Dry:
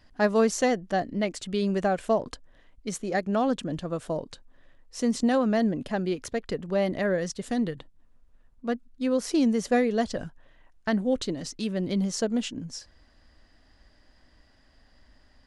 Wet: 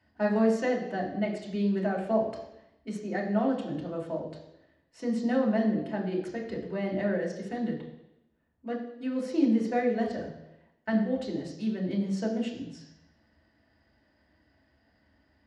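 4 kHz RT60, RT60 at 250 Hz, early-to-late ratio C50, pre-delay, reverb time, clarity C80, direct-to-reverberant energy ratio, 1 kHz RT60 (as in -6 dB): 0.90 s, 0.85 s, 6.0 dB, 3 ms, 0.90 s, 8.5 dB, -3.0 dB, 0.90 s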